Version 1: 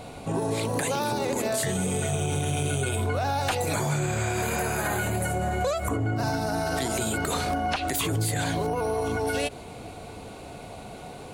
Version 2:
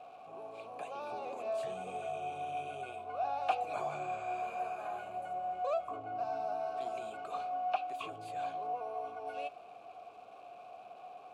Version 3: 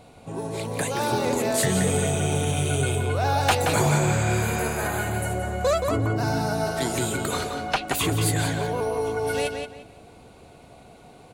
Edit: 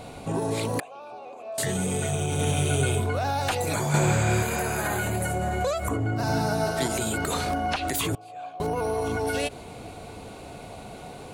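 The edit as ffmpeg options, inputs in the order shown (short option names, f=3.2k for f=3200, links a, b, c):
-filter_complex "[1:a]asplit=2[a][b];[2:a]asplit=3[c][d][e];[0:a]asplit=6[f][g][h][i][j][k];[f]atrim=end=0.802[l];[a]atrim=start=0.798:end=1.582[m];[g]atrim=start=1.578:end=2.392[n];[c]atrim=start=2.388:end=3.002[o];[h]atrim=start=2.998:end=3.942[p];[d]atrim=start=3.938:end=4.432[q];[i]atrim=start=4.428:end=6.292[r];[e]atrim=start=6.288:end=6.872[s];[j]atrim=start=6.868:end=8.152[t];[b]atrim=start=8.148:end=8.602[u];[k]atrim=start=8.598[v];[l][m]acrossfade=d=0.004:c1=hsin:c2=hsin[w];[w][n]acrossfade=d=0.004:c1=hsin:c2=hsin[x];[x][o]acrossfade=d=0.004:c1=hsin:c2=hsin[y];[y][p]acrossfade=d=0.004:c1=hsin:c2=hsin[z];[z][q]acrossfade=d=0.004:c1=hsin:c2=hsin[aa];[aa][r]acrossfade=d=0.004:c1=hsin:c2=hsin[ab];[ab][s]acrossfade=d=0.004:c1=hsin:c2=hsin[ac];[ac][t]acrossfade=d=0.004:c1=hsin:c2=hsin[ad];[ad][u]acrossfade=d=0.004:c1=hsin:c2=hsin[ae];[ae][v]acrossfade=d=0.004:c1=hsin:c2=hsin"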